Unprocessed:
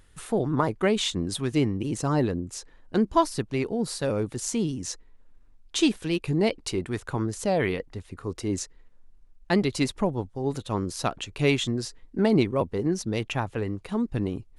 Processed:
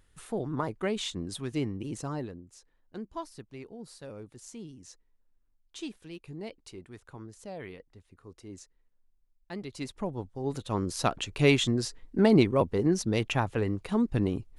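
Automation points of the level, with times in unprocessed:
0:01.98 −7.5 dB
0:02.43 −17 dB
0:09.53 −17 dB
0:10.13 −7 dB
0:11.11 +0.5 dB

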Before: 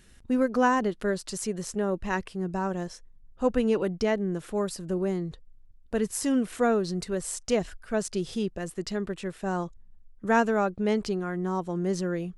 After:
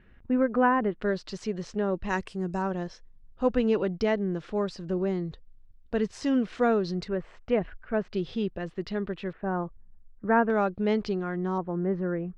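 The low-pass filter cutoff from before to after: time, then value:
low-pass filter 24 dB per octave
2,400 Hz
from 0:01.02 4,800 Hz
from 0:02.09 8,600 Hz
from 0:02.62 5,000 Hz
from 0:07.08 2,500 Hz
from 0:08.12 4,000 Hz
from 0:09.33 1,900 Hz
from 0:10.50 4,700 Hz
from 0:11.58 1,900 Hz

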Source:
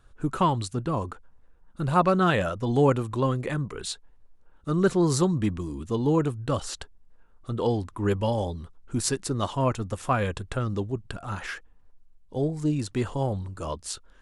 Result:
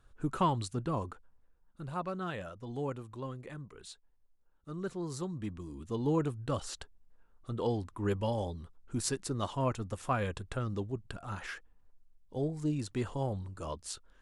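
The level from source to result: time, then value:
0:00.95 −6 dB
0:02.00 −16 dB
0:05.14 −16 dB
0:06.08 −7 dB

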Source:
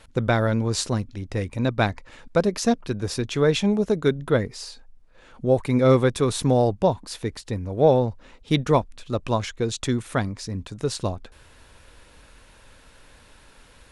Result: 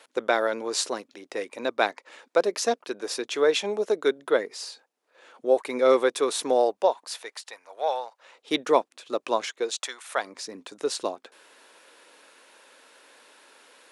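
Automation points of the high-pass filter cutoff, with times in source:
high-pass filter 24 dB per octave
0:06.54 360 Hz
0:07.58 760 Hz
0:08.08 760 Hz
0:08.52 330 Hz
0:09.53 330 Hz
0:10.00 810 Hz
0:10.36 320 Hz

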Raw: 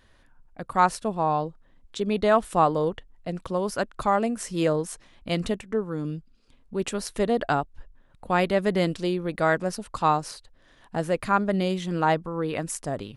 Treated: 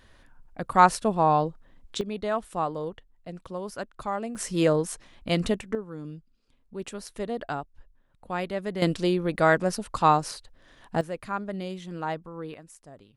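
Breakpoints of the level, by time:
+3 dB
from 0:02.01 −8 dB
from 0:04.35 +1.5 dB
from 0:05.75 −8 dB
from 0:08.82 +2 dB
from 0:11.01 −9 dB
from 0:12.54 −18 dB

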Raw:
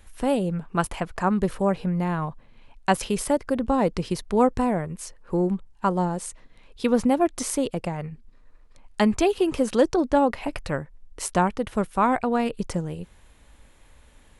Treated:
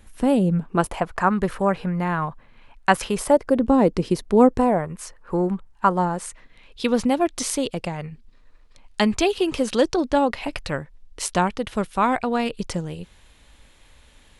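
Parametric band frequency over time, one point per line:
parametric band +7.5 dB 1.7 octaves
0:00.57 200 Hz
0:01.24 1,500 Hz
0:03.00 1,500 Hz
0:03.65 310 Hz
0:04.49 310 Hz
0:04.92 1,300 Hz
0:06.14 1,300 Hz
0:06.85 3,800 Hz

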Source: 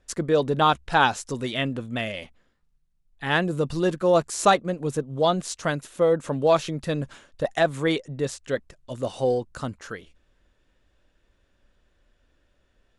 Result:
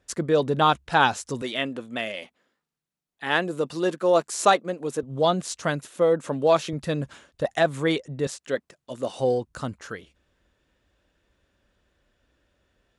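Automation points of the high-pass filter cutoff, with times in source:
66 Hz
from 0:01.42 260 Hz
from 0:05.03 70 Hz
from 0:05.88 150 Hz
from 0:06.73 54 Hz
from 0:08.27 190 Hz
from 0:09.19 52 Hz

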